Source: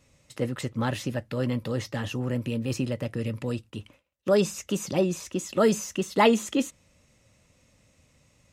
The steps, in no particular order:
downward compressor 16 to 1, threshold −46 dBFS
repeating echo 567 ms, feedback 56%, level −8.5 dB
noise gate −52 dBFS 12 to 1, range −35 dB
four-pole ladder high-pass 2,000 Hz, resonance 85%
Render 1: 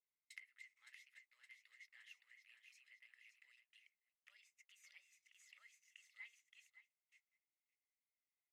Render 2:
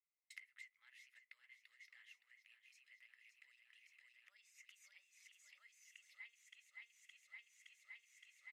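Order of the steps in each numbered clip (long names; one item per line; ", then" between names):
downward compressor, then repeating echo, then noise gate, then four-pole ladder high-pass
repeating echo, then noise gate, then downward compressor, then four-pole ladder high-pass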